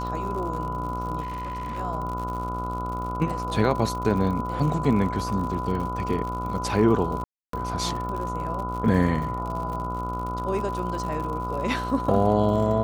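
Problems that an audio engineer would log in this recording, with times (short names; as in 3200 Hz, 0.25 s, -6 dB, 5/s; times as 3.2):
buzz 60 Hz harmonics 24 -32 dBFS
crackle 75/s -32 dBFS
tone 1000 Hz -30 dBFS
1.2–1.79 clipped -28.5 dBFS
7.24–7.53 gap 0.293 s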